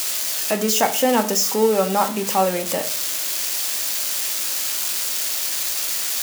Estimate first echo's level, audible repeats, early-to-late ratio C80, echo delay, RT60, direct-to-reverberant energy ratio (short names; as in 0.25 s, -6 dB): none, none, 17.5 dB, none, 0.45 s, 6.5 dB